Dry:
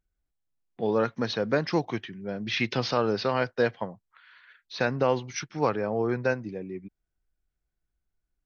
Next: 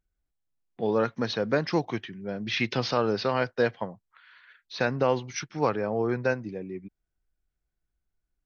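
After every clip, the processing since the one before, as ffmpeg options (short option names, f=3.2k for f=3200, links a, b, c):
-af anull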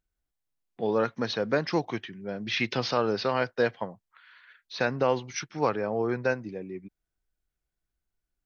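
-af "lowshelf=f=210:g=-4"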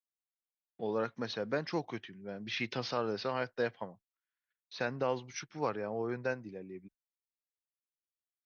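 -af "agate=range=-33dB:threshold=-49dB:ratio=16:detection=peak,volume=-8dB"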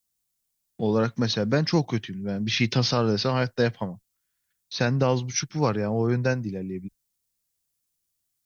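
-af "bass=f=250:g=14,treble=f=4k:g=12,volume=7.5dB"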